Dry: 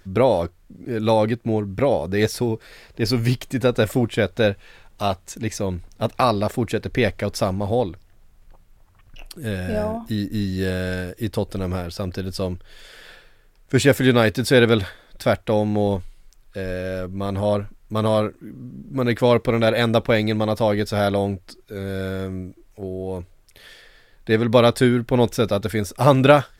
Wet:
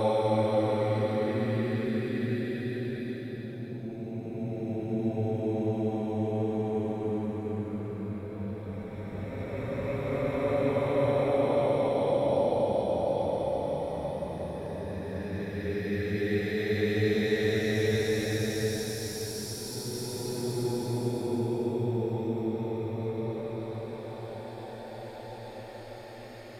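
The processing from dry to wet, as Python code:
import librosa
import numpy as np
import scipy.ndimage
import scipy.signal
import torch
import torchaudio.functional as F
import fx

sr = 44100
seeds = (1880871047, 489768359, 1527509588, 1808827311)

y = fx.echo_split(x, sr, split_hz=410.0, low_ms=137, high_ms=744, feedback_pct=52, wet_db=-15.0)
y = fx.paulstretch(y, sr, seeds[0], factor=17.0, window_s=0.25, from_s=1.19)
y = y * librosa.db_to_amplitude(-9.0)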